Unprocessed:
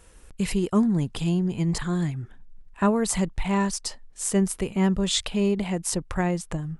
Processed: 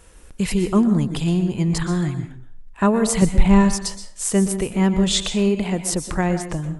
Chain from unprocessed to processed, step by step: 3.22–3.75 s: bass shelf 280 Hz +11 dB; on a send: reverberation RT60 0.45 s, pre-delay 112 ms, DRR 9 dB; on the sum: trim +4 dB

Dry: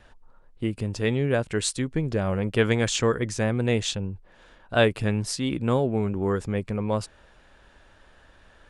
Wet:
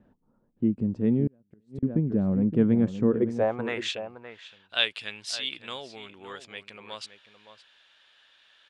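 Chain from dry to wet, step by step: band-pass sweep 220 Hz -> 3.4 kHz, 3.03–4.07 s; echo from a far wall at 97 m, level -11 dB; 1.27–1.83 s: inverted gate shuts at -32 dBFS, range -36 dB; trim +7 dB

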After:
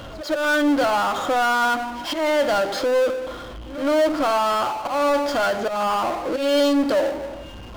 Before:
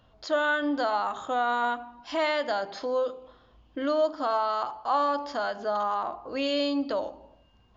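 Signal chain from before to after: slow attack 196 ms; small resonant body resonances 320/550/1400/3200 Hz, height 9 dB; reverse echo 116 ms -23.5 dB; power-law waveshaper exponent 0.5

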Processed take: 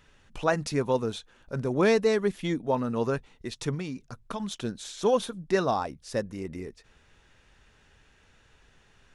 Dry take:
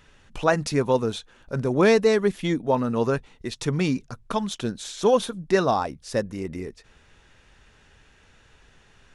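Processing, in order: 3.74–4.40 s: compression 5:1, threshold -27 dBFS, peak gain reduction 8 dB; trim -4.5 dB

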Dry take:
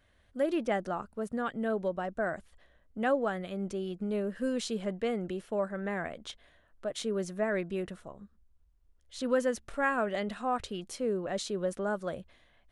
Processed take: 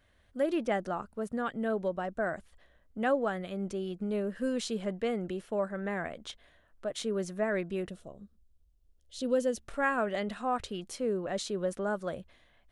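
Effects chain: 7.89–9.60 s: high-order bell 1.4 kHz -9.5 dB

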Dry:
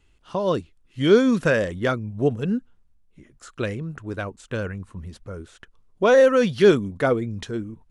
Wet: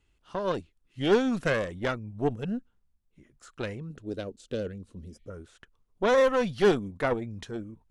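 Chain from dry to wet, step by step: 5.12–5.34 s: spectral replace 1.8–4.8 kHz after; Chebyshev shaper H 6 -17 dB, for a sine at -3.5 dBFS; 3.90–5.30 s: ten-band graphic EQ 125 Hz -3 dB, 250 Hz +5 dB, 500 Hz +7 dB, 1 kHz -12 dB, 2 kHz -7 dB, 4 kHz +7 dB; trim -7.5 dB

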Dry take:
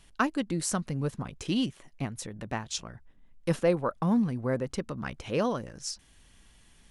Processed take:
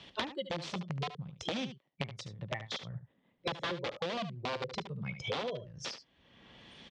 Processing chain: 0.63–2.86 s: companding laws mixed up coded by A; spectral noise reduction 22 dB; compression 3:1, threshold -36 dBFS, peak gain reduction 12.5 dB; integer overflow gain 31 dB; cabinet simulation 140–4700 Hz, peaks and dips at 530 Hz +6 dB, 1.5 kHz -4 dB, 3.4 kHz +6 dB; delay 73 ms -12.5 dB; three bands compressed up and down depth 100%; trim +1 dB

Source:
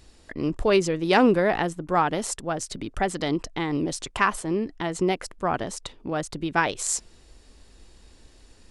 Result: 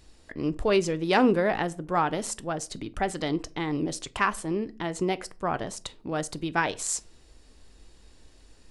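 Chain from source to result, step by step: 5.84–6.50 s: treble shelf 4.5 kHz +6 dB; reverberation RT60 0.40 s, pre-delay 6 ms, DRR 14.5 dB; trim -3 dB

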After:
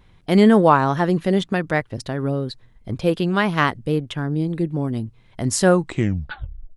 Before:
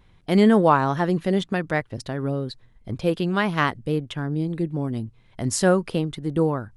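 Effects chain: tape stop on the ending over 1.06 s; trim +3 dB

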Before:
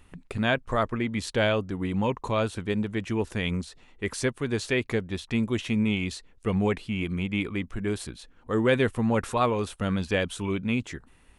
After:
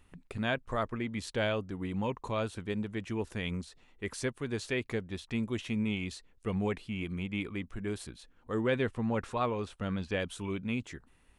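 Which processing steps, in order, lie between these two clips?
8.61–10.20 s: distance through air 62 m; trim -7 dB

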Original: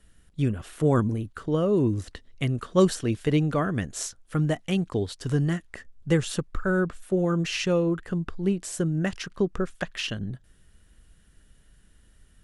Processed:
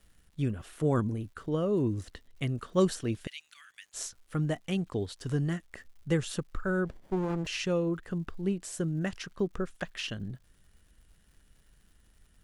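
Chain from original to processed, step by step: 3.27–3.94 s: inverse Chebyshev high-pass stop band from 510 Hz, stop band 70 dB; crackle 200 per s -50 dBFS; 6.85–7.47 s: sliding maximum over 33 samples; trim -5.5 dB

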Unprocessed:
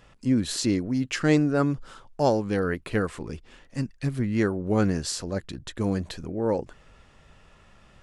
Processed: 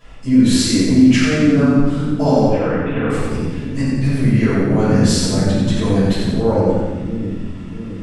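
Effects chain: 2.46–3.10 s: rippled Chebyshev low-pass 3.7 kHz, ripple 9 dB; peak limiter -18.5 dBFS, peak gain reduction 11 dB; two-band feedback delay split 320 Hz, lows 667 ms, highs 89 ms, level -4 dB; simulated room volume 320 m³, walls mixed, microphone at 5.7 m; trim -2.5 dB

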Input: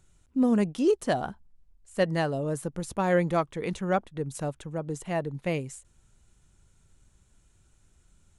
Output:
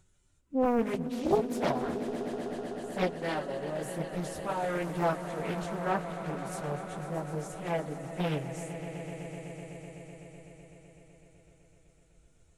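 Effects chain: plain phase-vocoder stretch 1.5×; echo with a slow build-up 126 ms, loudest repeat 5, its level -14 dB; loudspeaker Doppler distortion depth 0.91 ms; trim -1.5 dB

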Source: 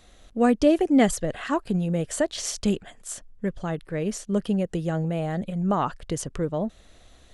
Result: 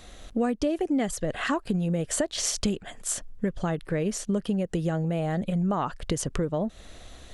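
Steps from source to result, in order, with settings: compression 6:1, threshold -31 dBFS, peak gain reduction 16.5 dB; trim +7 dB

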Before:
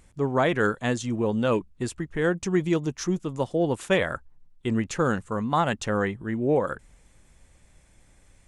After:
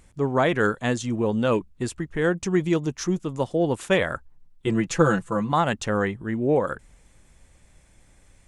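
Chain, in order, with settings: 4.66–5.52 s: comb 6 ms, depth 88%; trim +1.5 dB

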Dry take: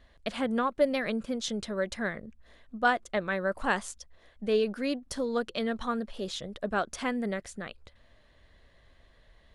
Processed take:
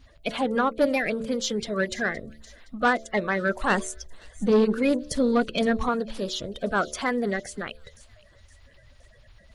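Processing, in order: coarse spectral quantiser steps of 30 dB; de-hum 74.33 Hz, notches 9; 3.70–5.89 s: bass shelf 430 Hz +7.5 dB; saturation -19.5 dBFS, distortion -15 dB; feedback echo behind a high-pass 517 ms, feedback 44%, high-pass 4 kHz, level -15 dB; trim +6.5 dB

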